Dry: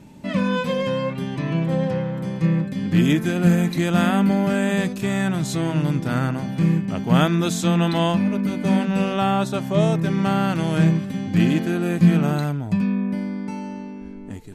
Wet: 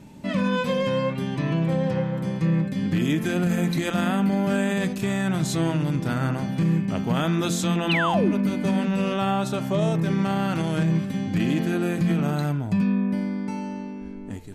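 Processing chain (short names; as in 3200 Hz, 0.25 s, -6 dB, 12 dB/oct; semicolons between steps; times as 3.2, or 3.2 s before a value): de-hum 85.94 Hz, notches 37; limiter -14.5 dBFS, peak gain reduction 8 dB; painted sound fall, 7.89–8.33, 250–3200 Hz -24 dBFS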